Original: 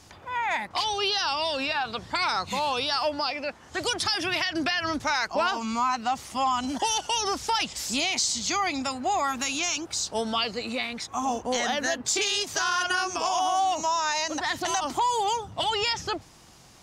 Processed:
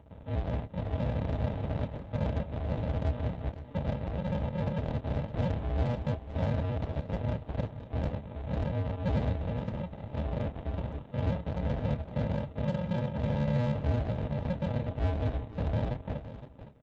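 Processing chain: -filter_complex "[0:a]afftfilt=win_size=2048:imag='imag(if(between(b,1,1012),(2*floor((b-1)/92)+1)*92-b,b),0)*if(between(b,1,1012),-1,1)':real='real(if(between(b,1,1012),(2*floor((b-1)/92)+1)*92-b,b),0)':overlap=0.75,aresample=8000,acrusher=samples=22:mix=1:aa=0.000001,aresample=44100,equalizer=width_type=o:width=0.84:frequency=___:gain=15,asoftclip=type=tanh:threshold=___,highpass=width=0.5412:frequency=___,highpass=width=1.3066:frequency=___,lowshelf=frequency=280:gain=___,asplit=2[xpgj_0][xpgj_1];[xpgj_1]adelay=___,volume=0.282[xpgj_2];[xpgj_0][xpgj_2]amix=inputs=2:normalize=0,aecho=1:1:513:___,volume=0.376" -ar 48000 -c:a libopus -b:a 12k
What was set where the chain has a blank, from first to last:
670, 0.0794, 55, 55, 11, 28, 0.251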